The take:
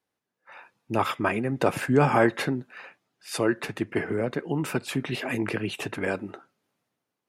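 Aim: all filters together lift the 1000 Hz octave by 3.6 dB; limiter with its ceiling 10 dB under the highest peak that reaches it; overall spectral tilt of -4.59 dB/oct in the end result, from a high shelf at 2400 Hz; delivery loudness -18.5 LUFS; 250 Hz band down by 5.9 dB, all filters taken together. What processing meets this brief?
bell 250 Hz -8.5 dB; bell 1000 Hz +6.5 dB; high shelf 2400 Hz -6.5 dB; gain +12 dB; limiter -4 dBFS

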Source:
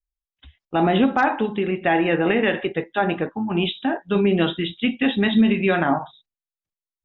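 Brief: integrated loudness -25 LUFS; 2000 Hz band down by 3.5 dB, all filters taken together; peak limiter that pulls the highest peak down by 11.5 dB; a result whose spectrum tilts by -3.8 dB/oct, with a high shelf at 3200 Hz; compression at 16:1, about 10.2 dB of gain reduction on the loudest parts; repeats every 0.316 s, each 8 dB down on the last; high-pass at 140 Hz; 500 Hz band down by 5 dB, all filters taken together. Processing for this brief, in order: HPF 140 Hz; bell 500 Hz -7 dB; bell 2000 Hz -7.5 dB; high shelf 3200 Hz +9 dB; compressor 16:1, threshold -24 dBFS; limiter -25 dBFS; feedback echo 0.316 s, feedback 40%, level -8 dB; gain +8.5 dB

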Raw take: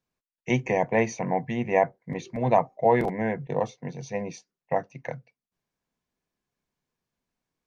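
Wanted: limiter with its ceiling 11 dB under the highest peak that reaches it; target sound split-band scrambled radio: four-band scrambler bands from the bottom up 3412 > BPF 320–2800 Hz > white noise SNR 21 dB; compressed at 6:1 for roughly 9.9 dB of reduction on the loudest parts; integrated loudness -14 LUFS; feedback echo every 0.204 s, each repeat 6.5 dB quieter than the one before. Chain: compressor 6:1, threshold -25 dBFS; limiter -24.5 dBFS; feedback echo 0.204 s, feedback 47%, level -6.5 dB; four-band scrambler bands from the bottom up 3412; BPF 320–2800 Hz; white noise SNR 21 dB; gain +23 dB

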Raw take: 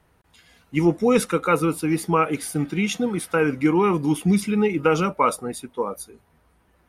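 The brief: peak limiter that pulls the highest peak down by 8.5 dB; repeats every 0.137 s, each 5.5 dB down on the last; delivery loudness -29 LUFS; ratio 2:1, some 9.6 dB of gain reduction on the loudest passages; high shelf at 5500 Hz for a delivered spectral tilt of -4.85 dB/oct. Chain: high shelf 5500 Hz +3.5 dB; compressor 2:1, threshold -32 dBFS; limiter -23 dBFS; feedback echo 0.137 s, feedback 53%, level -5.5 dB; gain +2.5 dB

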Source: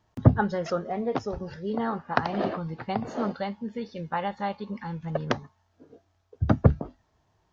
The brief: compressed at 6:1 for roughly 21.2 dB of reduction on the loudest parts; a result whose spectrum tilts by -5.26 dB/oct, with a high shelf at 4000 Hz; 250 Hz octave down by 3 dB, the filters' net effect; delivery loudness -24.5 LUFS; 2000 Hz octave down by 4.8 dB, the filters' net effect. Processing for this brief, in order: bell 250 Hz -4 dB; bell 2000 Hz -5.5 dB; high shelf 4000 Hz -5.5 dB; compressor 6:1, threshold -35 dBFS; gain +15.5 dB

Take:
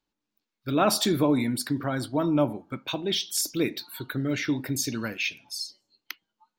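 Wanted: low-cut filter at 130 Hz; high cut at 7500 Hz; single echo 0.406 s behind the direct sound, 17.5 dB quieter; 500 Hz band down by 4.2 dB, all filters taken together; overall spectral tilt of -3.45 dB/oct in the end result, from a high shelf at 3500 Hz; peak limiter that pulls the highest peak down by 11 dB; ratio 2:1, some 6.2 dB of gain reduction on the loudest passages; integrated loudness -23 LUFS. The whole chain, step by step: HPF 130 Hz; LPF 7500 Hz; bell 500 Hz -6 dB; high shelf 3500 Hz +8.5 dB; compressor 2:1, threshold -30 dBFS; limiter -24 dBFS; echo 0.406 s -17.5 dB; gain +11 dB

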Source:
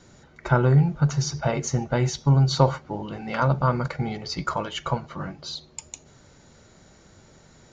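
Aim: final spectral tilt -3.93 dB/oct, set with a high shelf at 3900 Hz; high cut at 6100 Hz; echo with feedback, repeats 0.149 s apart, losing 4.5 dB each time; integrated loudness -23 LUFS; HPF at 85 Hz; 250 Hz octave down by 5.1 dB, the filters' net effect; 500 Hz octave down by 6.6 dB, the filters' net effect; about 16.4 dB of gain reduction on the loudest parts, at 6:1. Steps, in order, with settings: HPF 85 Hz; LPF 6100 Hz; bell 250 Hz -9 dB; bell 500 Hz -6 dB; high shelf 3900 Hz +3 dB; compressor 6:1, threshold -36 dBFS; feedback echo 0.149 s, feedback 60%, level -4.5 dB; gain +15 dB

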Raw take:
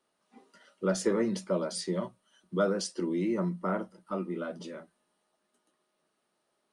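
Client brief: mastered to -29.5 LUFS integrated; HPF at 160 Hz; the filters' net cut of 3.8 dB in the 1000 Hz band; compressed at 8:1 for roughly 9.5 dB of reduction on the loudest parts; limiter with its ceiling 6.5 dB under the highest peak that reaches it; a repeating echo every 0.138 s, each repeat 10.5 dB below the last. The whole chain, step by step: HPF 160 Hz; bell 1000 Hz -5.5 dB; compressor 8:1, threshold -33 dBFS; limiter -31 dBFS; feedback echo 0.138 s, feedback 30%, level -10.5 dB; gain +11.5 dB

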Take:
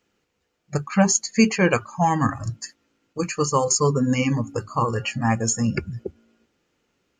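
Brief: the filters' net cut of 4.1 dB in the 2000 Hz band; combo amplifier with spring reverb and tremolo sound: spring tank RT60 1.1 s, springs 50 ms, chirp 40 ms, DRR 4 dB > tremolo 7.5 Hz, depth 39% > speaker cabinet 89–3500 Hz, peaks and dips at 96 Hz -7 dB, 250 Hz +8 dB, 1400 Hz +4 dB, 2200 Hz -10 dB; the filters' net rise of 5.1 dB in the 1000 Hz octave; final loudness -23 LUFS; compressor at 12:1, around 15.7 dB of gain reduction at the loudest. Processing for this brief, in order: bell 1000 Hz +7 dB; bell 2000 Hz -6 dB; compressor 12:1, threshold -27 dBFS; spring tank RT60 1.1 s, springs 50 ms, chirp 40 ms, DRR 4 dB; tremolo 7.5 Hz, depth 39%; speaker cabinet 89–3500 Hz, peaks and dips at 96 Hz -7 dB, 250 Hz +8 dB, 1400 Hz +4 dB, 2200 Hz -10 dB; gain +9 dB

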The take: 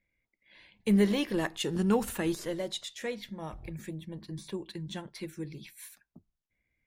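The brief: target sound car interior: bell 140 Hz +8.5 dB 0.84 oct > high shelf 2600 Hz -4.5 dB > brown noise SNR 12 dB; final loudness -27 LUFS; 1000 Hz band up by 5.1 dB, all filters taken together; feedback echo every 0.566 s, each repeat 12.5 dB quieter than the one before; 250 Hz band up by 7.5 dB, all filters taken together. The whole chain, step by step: bell 140 Hz +8.5 dB 0.84 oct; bell 250 Hz +6 dB; bell 1000 Hz +6.5 dB; high shelf 2600 Hz -4.5 dB; feedback echo 0.566 s, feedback 24%, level -12.5 dB; brown noise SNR 12 dB; gain -1 dB

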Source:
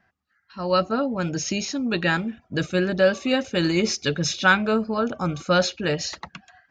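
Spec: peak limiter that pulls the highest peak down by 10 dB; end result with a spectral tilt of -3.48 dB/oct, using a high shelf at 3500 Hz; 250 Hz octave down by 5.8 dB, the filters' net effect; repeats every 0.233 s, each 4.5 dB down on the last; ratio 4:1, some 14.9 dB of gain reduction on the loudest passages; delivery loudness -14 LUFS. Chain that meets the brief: bell 250 Hz -8.5 dB; high shelf 3500 Hz +3.5 dB; compressor 4:1, threshold -32 dBFS; limiter -28 dBFS; feedback echo 0.233 s, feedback 60%, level -4.5 dB; gain +21.5 dB

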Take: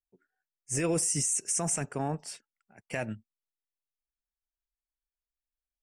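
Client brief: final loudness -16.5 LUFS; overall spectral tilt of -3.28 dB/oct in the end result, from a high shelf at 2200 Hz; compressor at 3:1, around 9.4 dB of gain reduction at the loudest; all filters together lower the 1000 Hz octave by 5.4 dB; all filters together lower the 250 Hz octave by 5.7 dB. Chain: bell 250 Hz -9 dB; bell 1000 Hz -6.5 dB; high shelf 2200 Hz -3.5 dB; compressor 3:1, threshold -42 dBFS; gain +26.5 dB

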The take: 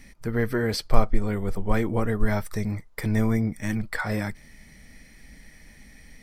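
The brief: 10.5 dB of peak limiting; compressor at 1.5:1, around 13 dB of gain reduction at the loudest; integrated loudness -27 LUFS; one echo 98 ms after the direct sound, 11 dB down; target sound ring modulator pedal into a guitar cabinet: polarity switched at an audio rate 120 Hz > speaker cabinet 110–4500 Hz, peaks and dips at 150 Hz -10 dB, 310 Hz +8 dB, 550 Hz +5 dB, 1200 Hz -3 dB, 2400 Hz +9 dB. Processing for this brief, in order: compressor 1.5:1, threshold -45 dBFS; limiter -26 dBFS; echo 98 ms -11 dB; polarity switched at an audio rate 120 Hz; speaker cabinet 110–4500 Hz, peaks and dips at 150 Hz -10 dB, 310 Hz +8 dB, 550 Hz +5 dB, 1200 Hz -3 dB, 2400 Hz +9 dB; gain +7.5 dB

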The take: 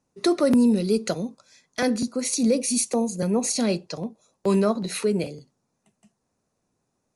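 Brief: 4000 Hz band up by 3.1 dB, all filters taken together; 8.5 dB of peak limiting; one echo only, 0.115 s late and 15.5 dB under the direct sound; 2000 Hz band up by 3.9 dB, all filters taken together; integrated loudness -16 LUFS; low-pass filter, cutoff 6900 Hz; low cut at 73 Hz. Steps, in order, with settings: HPF 73 Hz; LPF 6900 Hz; bell 2000 Hz +4 dB; bell 4000 Hz +3.5 dB; limiter -16.5 dBFS; echo 0.115 s -15.5 dB; gain +10.5 dB

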